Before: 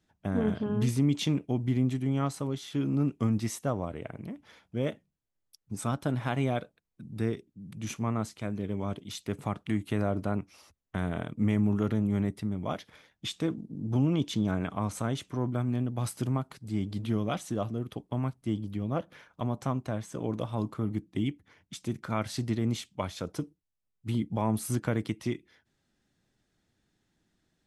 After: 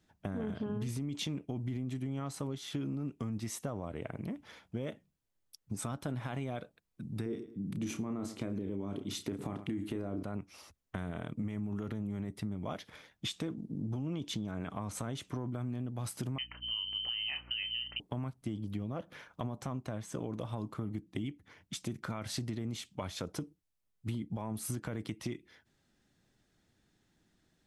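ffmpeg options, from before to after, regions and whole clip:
-filter_complex "[0:a]asettb=1/sr,asplit=3[a][b][c];[a]atrim=end=7.264[d];[b]atrim=start=7.26:end=10.23,asetpts=PTS-STARTPTS,afade=t=in:d=0.004:c=qsin,afade=t=out:st=2.966:d=0.004:c=qsin,equalizer=f=320:w=1.1:g=11.5,asplit=2[e][f];[f]adelay=31,volume=-9dB[g];[e][g]amix=inputs=2:normalize=0,atrim=end_sample=130977,aecho=1:1:108|216:0.0841|0.0185,atrim=end_sample=130977[h];[c]atrim=start=10.226[i];[d][h]acrossfade=d=0.004:c1=hsin:c2=qsin[j];[j][i]acrossfade=d=0.004:c1=qsin:c2=hsin,asettb=1/sr,asplit=3[k][l][m];[k]atrim=end=16.384[n];[l]atrim=start=16.38:end=18,asetpts=PTS-STARTPTS,afade=t=in:d=0.004:c=qsin,afade=t=out:st=1.616:d=0.004:c=qsin,lowpass=f=2.7k:t=q:w=0.5098,lowpass=f=2.7k:t=q:w=0.6013,lowpass=f=2.7k:t=q:w=0.9,lowpass=f=2.7k:t=q:w=2.563,afreqshift=-3200,asplit=2[o][p];[p]adelay=31,volume=-11dB[q];[o][q]amix=inputs=2:normalize=0,atrim=end_sample=71442,aeval=exprs='val(0)+0.002*(sin(2*PI*60*n/s)+sin(2*PI*2*60*n/s)/2+sin(2*PI*3*60*n/s)/3+sin(2*PI*4*60*n/s)/4+sin(2*PI*5*60*n/s)/5)':c=same[r];[m]atrim=start=17.996[s];[n][r]acrossfade=d=0.004:c1=hsin:c2=qsin[t];[t][s]acrossfade=d=0.004:c1=qsin:c2=hsin,alimiter=limit=-22.5dB:level=0:latency=1:release=24,acompressor=threshold=-36dB:ratio=6,volume=2dB"

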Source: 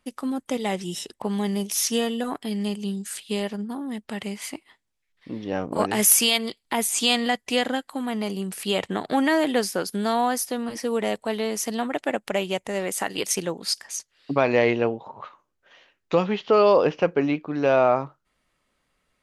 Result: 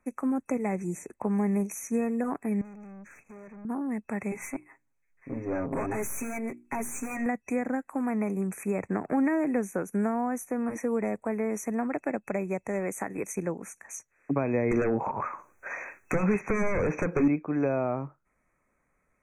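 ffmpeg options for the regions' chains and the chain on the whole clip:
-filter_complex "[0:a]asettb=1/sr,asplit=3[a][b][c];[a]atrim=end=2.614[d];[b]atrim=start=2.61:end=3.65,asetpts=PTS-STARTPTS,afade=t=in:d=0.004:c=qsin,afade=t=out:st=1.036:d=0.004:c=qsin,lowpass=f=4.7k:w=0.5412,lowpass=f=4.7k:w=1.3066,acompressor=threshold=-34dB:ratio=2:attack=3.2:release=140:knee=1:detection=peak,aeval=exprs='(tanh(158*val(0)+0.3)-tanh(0.3))/158':c=same[e];[c]atrim=start=3.646[f];[d][e]acrossfade=d=0.004:c1=hsin:c2=qsin[g];[g][f]acrossfade=d=0.004:c1=qsin:c2=hsin,asettb=1/sr,asplit=3[h][i][j];[h]atrim=end=4.314[k];[i]atrim=start=4.31:end=7.26,asetpts=PTS-STARTPTS,afade=t=in:d=0.004:c=qsin,afade=t=out:st=2.946:d=0.004:c=qsin,bandreject=f=60:t=h:w=6,bandreject=f=120:t=h:w=6,bandreject=f=180:t=h:w=6,bandreject=f=240:t=h:w=6,bandreject=f=300:t=h:w=6,bandreject=f=360:t=h:w=6,aecho=1:1:7.4:0.98,atrim=end_sample=130095,aeval=exprs='(tanh(15.8*val(0)+0.35)-tanh(0.35))/15.8':c=same[l];[j]atrim=start=7.256[m];[k][l]acrossfade=d=0.004:c1=hsin:c2=qsin[n];[n][m]acrossfade=d=0.004:c1=qsin:c2=hsin,asettb=1/sr,asplit=3[o][p][q];[o]atrim=end=14.714[r];[p]atrim=start=14.71:end=17.28,asetpts=PTS-STARTPTS,afade=t=in:d=0.004:c=qsin,afade=t=out:st=2.566:d=0.004:c=qsin,lowshelf=f=470:g=-11.5,acompressor=threshold=-39dB:ratio=2:attack=3.2:release=140:knee=1:detection=peak,aeval=exprs='0.188*sin(PI/2*8.91*val(0)/0.188)':c=same[s];[q]atrim=start=17.276[t];[r][s]acrossfade=d=0.004:c1=hsin:c2=qsin[u];[u][t]acrossfade=d=0.004:c1=qsin:c2=hsin,acrossover=split=320[v][w];[w]acompressor=threshold=-30dB:ratio=5[x];[v][x]amix=inputs=2:normalize=0,afftfilt=real='re*(1-between(b*sr/4096,2600,5800))':imag='im*(1-between(b*sr/4096,2600,5800))':win_size=4096:overlap=0.75,highshelf=f=5k:g=-8.5"

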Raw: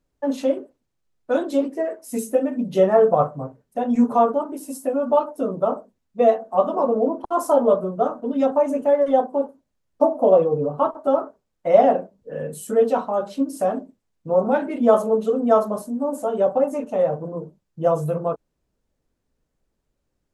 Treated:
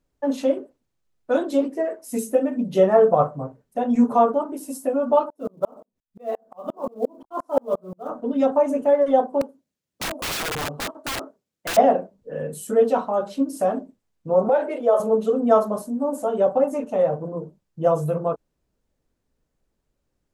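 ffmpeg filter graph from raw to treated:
-filter_complex "[0:a]asettb=1/sr,asplit=3[a][b][c];[a]atrim=end=5.304[d];[b]atrim=start=5.3:end=8.1,asetpts=PTS-STARTPTS,afade=t=in:d=0.004:c=qsin,afade=t=out:st=2.796:d=0.004:c=qsin,acrossover=split=3600[e][f];[f]acompressor=threshold=-53dB:ratio=4:attack=1:release=60[g];[e][g]amix=inputs=2:normalize=0,acrusher=bits=9:mode=log:mix=0:aa=0.000001,aeval=exprs='val(0)*pow(10,-37*if(lt(mod(-5.7*n/s,1),2*abs(-5.7)/1000),1-mod(-5.7*n/s,1)/(2*abs(-5.7)/1000),(mod(-5.7*n/s,1)-2*abs(-5.7)/1000)/(1-2*abs(-5.7)/1000))/20)':c=same[h];[c]atrim=start=8.096[i];[d][h]acrossfade=d=0.004:c1=hsin:c2=qsin[j];[j][i]acrossfade=d=0.004:c1=qsin:c2=hsin,asettb=1/sr,asplit=3[k][l][m];[k]atrim=end=9.414[n];[l]atrim=start=9.41:end=11.77,asetpts=PTS-STARTPTS,afade=t=in:d=0.004:c=qsin,afade=t=out:st=2.356:d=0.004:c=qsin,highpass=140,equalizer=f=940:t=o:w=1.8:g=-8,aeval=exprs='(mod(13.3*val(0)+1,2)-1)/13.3':c=same[o];[m]atrim=start=11.766[p];[n][o]acrossfade=d=0.004:c1=hsin:c2=qsin[q];[q][p]acrossfade=d=0.004:c1=qsin:c2=hsin,asettb=1/sr,asplit=3[r][s][t];[r]atrim=end=14.494[u];[s]atrim=start=14.49:end=15,asetpts=PTS-STARTPTS,afade=t=in:d=0.004:c=qsin,afade=t=out:st=0.506:d=0.004:c=qsin,acompressor=threshold=-20dB:ratio=3:attack=3.2:release=140:knee=1:detection=peak,highpass=f=510:t=q:w=2.4[v];[t]atrim=start=14.996[w];[u][v]acrossfade=d=0.004:c1=hsin:c2=qsin[x];[x][w]acrossfade=d=0.004:c1=qsin:c2=hsin"

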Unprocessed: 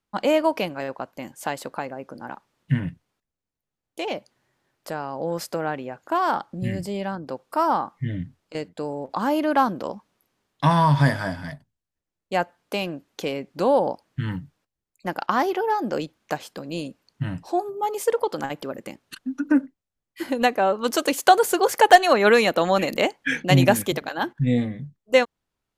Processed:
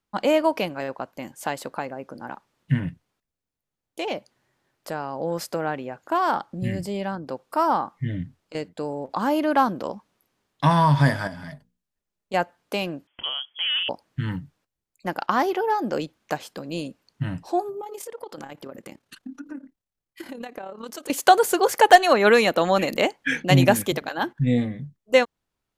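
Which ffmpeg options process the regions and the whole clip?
-filter_complex "[0:a]asettb=1/sr,asplit=3[a][b][c];[a]atrim=end=11.274[d];[b]atrim=start=11.27:end=12.34,asetpts=PTS-STARTPTS,afade=t=in:d=0.004:c=qsin,afade=t=out:st=1.066:d=0.004:c=qsin,bandreject=f=60:t=h:w=6,bandreject=f=120:t=h:w=6,bandreject=f=180:t=h:w=6,bandreject=f=240:t=h:w=6,bandreject=f=300:t=h:w=6,bandreject=f=360:t=h:w=6,bandreject=f=420:t=h:w=6,bandreject=f=480:t=h:w=6,aecho=1:1:4.9:0.35,atrim=end_sample=47187,acompressor=threshold=-35dB:ratio=2.5:attack=3.2:release=140:knee=1:detection=peak[e];[c]atrim=start=12.336[f];[d][e]acrossfade=d=0.004:c1=hsin:c2=qsin[g];[g][f]acrossfade=d=0.004:c1=qsin:c2=hsin,asettb=1/sr,asplit=3[h][i][j];[h]atrim=end=13.074[k];[i]atrim=start=13.07:end=13.89,asetpts=PTS-STARTPTS,afade=t=in:d=0.004:c=qsin,afade=t=out:st=0.816:d=0.004:c=qsin,asoftclip=type=hard:threshold=-16dB,acompressor=threshold=-24dB:ratio=2.5:attack=3.2:release=140:knee=1:detection=peak,lowpass=f=3k:t=q:w=0.5098,lowpass=f=3k:t=q:w=0.6013,lowpass=f=3k:t=q:w=0.9,lowpass=f=3k:t=q:w=2.563,afreqshift=-3500[l];[j]atrim=start=13.886[m];[k][l]acrossfade=d=0.004:c1=hsin:c2=qsin[n];[n][m]acrossfade=d=0.004:c1=qsin:c2=hsin,asettb=1/sr,asplit=3[o][p][q];[o]atrim=end=17.814[r];[p]atrim=start=17.81:end=21.1,asetpts=PTS-STARTPTS,afade=t=in:d=0.004:c=qsin,afade=t=out:st=3.286:d=0.004:c=qsin,acompressor=threshold=-30dB:ratio=8:attack=3.2:release=140:knee=1:detection=peak,tremolo=f=35:d=0.621[s];[q]atrim=start=21.096[t];[r][s]acrossfade=d=0.004:c1=hsin:c2=qsin[u];[u][t]acrossfade=d=0.004:c1=qsin:c2=hsin"

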